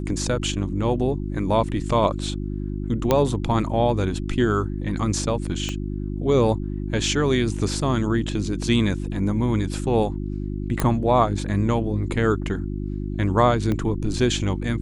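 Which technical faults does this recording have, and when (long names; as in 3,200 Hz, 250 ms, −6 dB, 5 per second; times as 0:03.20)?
mains hum 50 Hz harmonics 7 −28 dBFS
0:03.11: click −5 dBFS
0:05.69: click −14 dBFS
0:10.80: click −8 dBFS
0:13.72: click −14 dBFS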